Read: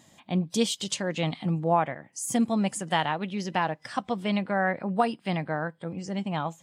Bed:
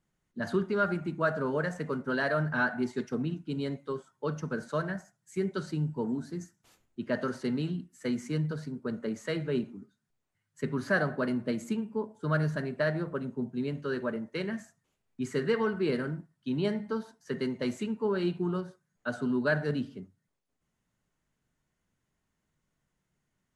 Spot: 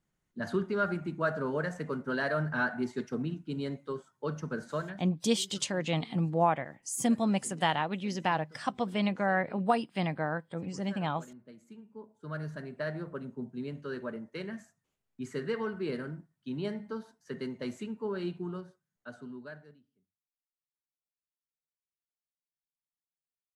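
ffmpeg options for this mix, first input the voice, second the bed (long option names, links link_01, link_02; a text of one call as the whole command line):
ffmpeg -i stem1.wav -i stem2.wav -filter_complex "[0:a]adelay=4700,volume=-2.5dB[link_01];[1:a]volume=13.5dB,afade=type=out:start_time=4.72:duration=0.38:silence=0.112202,afade=type=in:start_time=11.66:duration=1.4:silence=0.16788,afade=type=out:start_time=18.25:duration=1.55:silence=0.0354813[link_02];[link_01][link_02]amix=inputs=2:normalize=0" out.wav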